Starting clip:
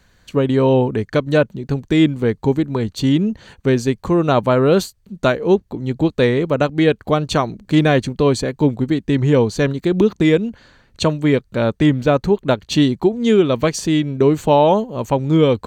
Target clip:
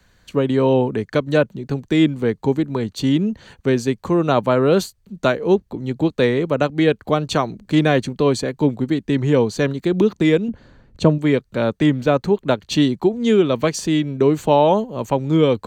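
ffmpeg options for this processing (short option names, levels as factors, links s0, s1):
-filter_complex "[0:a]asettb=1/sr,asplit=3[s0][s1][s2];[s0]atrim=end=10.484[s3];[s1]atrim=start=10.48:end=11.18,asetpts=PTS-STARTPTS,afade=t=in:d=0.004:c=qsin,afade=t=out:st=0.696:d=0.004:c=qsin,tiltshelf=f=850:g=7.5[s4];[s2]atrim=start=11.176[s5];[s3][s4]acrossfade=d=0.004:c1=hsin:c2=qsin[s6];[s6][s5]acrossfade=d=0.004:c1=qsin:c2=hsin,acrossover=split=110|480|2900[s7][s8][s9][s10];[s7]acompressor=threshold=0.00891:ratio=6[s11];[s11][s8][s9][s10]amix=inputs=4:normalize=0,volume=0.841"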